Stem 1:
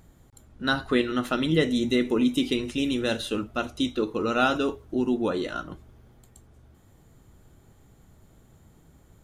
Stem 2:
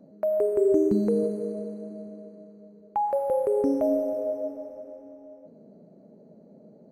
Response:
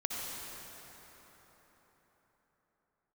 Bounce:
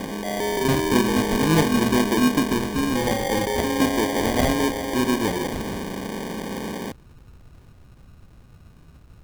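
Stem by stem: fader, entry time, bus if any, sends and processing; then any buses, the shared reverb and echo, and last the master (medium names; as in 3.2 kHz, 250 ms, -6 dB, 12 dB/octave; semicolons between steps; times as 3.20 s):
-1.5 dB, 0.00 s, send -21.5 dB, treble shelf 7.8 kHz +11 dB
-3.0 dB, 0.00 s, no send, spectral levelling over time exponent 0.4; band-stop 600 Hz, Q 12; peak limiter -16.5 dBFS, peak gain reduction 8 dB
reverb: on, RT60 4.5 s, pre-delay 53 ms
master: bass shelf 210 Hz +10 dB; sample-and-hold 33×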